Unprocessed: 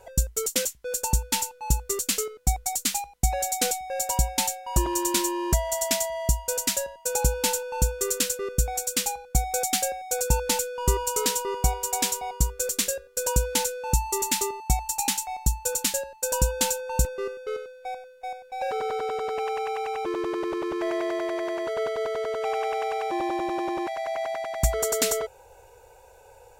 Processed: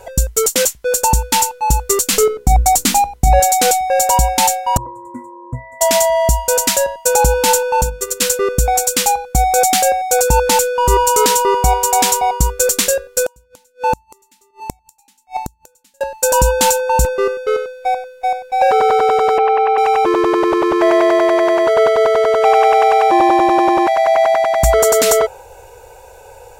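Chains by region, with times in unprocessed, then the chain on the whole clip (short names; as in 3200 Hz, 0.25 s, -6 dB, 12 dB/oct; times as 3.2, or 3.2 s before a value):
2.13–3.4 low shelf 490 Hz +10 dB + notches 60/120/180/240/300/360/420/480/540 Hz
4.77–5.81 Chebyshev band-stop 1600–8000 Hz, order 3 + bell 4100 Hz +7.5 dB 1.5 oct + octave resonator B, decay 0.17 s
7.81–8.22 gate -26 dBFS, range -11 dB + compressor 1.5:1, threshold -33 dBFS + notches 50/100/150/200/250/300/350/400/450 Hz
13.24–16.01 de-hum 82.04 Hz, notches 5 + flipped gate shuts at -23 dBFS, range -40 dB
19.38–19.78 HPF 230 Hz 24 dB/oct + air absorption 300 m
whole clip: dynamic EQ 890 Hz, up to +6 dB, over -41 dBFS, Q 0.79; maximiser +13.5 dB; gain -1 dB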